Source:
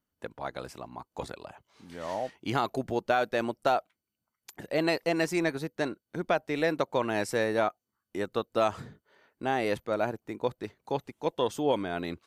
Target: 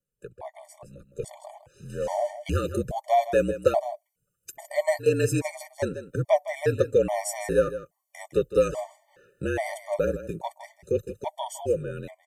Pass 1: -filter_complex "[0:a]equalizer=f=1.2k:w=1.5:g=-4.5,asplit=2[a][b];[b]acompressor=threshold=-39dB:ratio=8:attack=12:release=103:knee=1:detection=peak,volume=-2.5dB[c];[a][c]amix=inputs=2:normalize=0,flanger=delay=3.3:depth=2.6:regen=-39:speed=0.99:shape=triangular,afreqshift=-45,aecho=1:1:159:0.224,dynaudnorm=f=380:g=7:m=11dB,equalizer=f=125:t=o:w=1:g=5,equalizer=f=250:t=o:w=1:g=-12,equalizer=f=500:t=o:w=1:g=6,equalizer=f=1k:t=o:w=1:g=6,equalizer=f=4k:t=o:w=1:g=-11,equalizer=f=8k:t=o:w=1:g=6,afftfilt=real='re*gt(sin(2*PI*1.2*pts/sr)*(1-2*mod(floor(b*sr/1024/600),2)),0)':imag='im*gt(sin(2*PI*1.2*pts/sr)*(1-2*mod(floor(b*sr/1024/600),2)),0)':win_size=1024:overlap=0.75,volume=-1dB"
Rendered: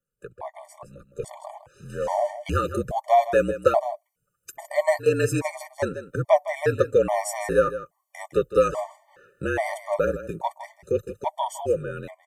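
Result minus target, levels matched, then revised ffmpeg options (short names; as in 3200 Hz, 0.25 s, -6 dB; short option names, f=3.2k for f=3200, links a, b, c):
1000 Hz band +2.5 dB
-filter_complex "[0:a]equalizer=f=1.2k:w=1.5:g=-16,asplit=2[a][b];[b]acompressor=threshold=-39dB:ratio=8:attack=12:release=103:knee=1:detection=peak,volume=-2.5dB[c];[a][c]amix=inputs=2:normalize=0,flanger=delay=3.3:depth=2.6:regen=-39:speed=0.99:shape=triangular,afreqshift=-45,aecho=1:1:159:0.224,dynaudnorm=f=380:g=7:m=11dB,equalizer=f=125:t=o:w=1:g=5,equalizer=f=250:t=o:w=1:g=-12,equalizer=f=500:t=o:w=1:g=6,equalizer=f=1k:t=o:w=1:g=6,equalizer=f=4k:t=o:w=1:g=-11,equalizer=f=8k:t=o:w=1:g=6,afftfilt=real='re*gt(sin(2*PI*1.2*pts/sr)*(1-2*mod(floor(b*sr/1024/600),2)),0)':imag='im*gt(sin(2*PI*1.2*pts/sr)*(1-2*mod(floor(b*sr/1024/600),2)),0)':win_size=1024:overlap=0.75,volume=-1dB"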